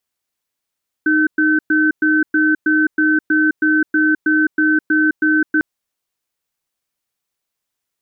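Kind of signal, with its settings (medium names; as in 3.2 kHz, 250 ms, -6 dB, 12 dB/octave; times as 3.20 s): cadence 309 Hz, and 1.53 kHz, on 0.21 s, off 0.11 s, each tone -14 dBFS 4.55 s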